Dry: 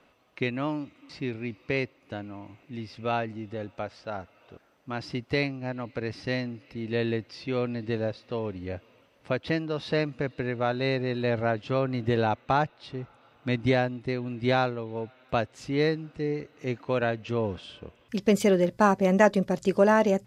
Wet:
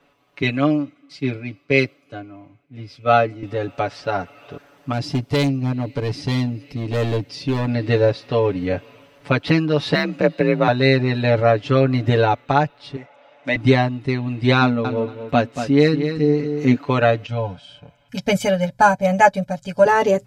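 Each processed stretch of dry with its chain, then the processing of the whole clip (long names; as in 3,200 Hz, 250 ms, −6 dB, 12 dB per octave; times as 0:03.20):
0:00.42–0:03.43: notch comb filter 920 Hz + multiband upward and downward expander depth 100%
0:04.92–0:07.68: parametric band 1,400 Hz −10.5 dB 2.4 octaves + gain into a clipping stage and back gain 30.5 dB
0:09.94–0:10.68: running median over 3 samples + hollow resonant body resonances 530/2,500 Hz, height 7 dB + frequency shifter +41 Hz
0:12.96–0:13.56: one scale factor per block 7 bits + loudspeaker in its box 320–6,700 Hz, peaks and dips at 400 Hz −8 dB, 580 Hz +10 dB, 1,300 Hz −7 dB, 2,000 Hz +6 dB, 4,300 Hz −6 dB
0:14.61–0:16.76: parametric band 240 Hz +13 dB 0.25 octaves + repeating echo 234 ms, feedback 16%, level −9 dB
0:17.26–0:19.86: parametric band 340 Hz −4.5 dB 0.42 octaves + comb filter 1.3 ms, depth 80% + expander for the loud parts, over −38 dBFS
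whole clip: comb filter 7 ms, depth 99%; automatic gain control; level −1 dB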